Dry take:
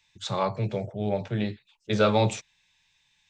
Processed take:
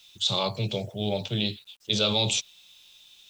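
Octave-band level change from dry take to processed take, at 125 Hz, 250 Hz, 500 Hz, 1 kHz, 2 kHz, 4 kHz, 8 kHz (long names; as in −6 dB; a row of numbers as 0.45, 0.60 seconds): −2.0, −2.5, −4.0, −5.5, −1.0, +12.0, +9.0 decibels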